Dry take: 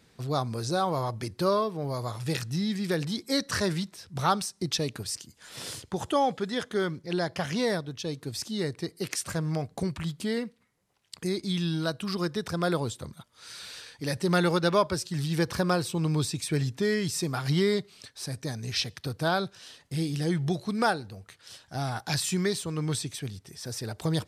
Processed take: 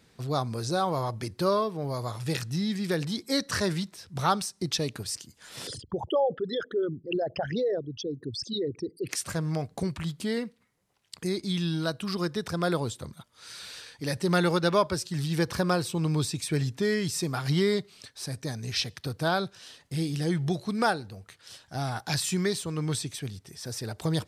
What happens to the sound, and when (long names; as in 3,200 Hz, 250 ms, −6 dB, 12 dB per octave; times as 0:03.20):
0:05.67–0:09.09: spectral envelope exaggerated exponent 3